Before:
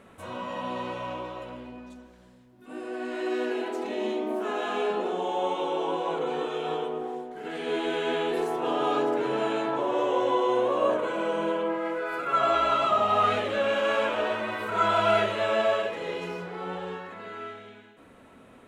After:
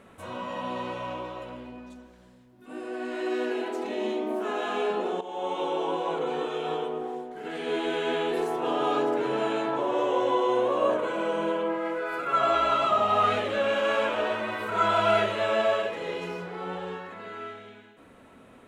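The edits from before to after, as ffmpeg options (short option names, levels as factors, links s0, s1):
-filter_complex "[0:a]asplit=2[s0][s1];[s0]atrim=end=5.21,asetpts=PTS-STARTPTS,afade=t=out:st=5.206:d=0.004:c=hsin:silence=0.237137[s2];[s1]atrim=start=5.21,asetpts=PTS-STARTPTS,afade=t=in:d=0.41:silence=0.237137[s3];[s2][s3]concat=n=2:v=0:a=1"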